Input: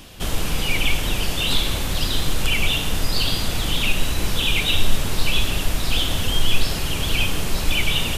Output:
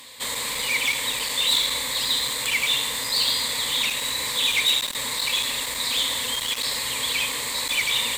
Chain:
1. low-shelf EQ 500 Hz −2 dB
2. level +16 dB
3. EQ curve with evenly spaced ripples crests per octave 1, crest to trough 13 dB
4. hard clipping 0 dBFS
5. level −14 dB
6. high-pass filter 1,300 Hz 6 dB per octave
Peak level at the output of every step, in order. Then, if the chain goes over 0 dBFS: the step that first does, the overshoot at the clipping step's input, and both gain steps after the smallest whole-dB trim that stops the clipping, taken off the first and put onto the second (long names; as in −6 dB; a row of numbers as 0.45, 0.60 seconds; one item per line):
−5.0, +11.0, +10.0, 0.0, −14.0, −11.0 dBFS
step 2, 10.0 dB
step 2 +6 dB, step 5 −4 dB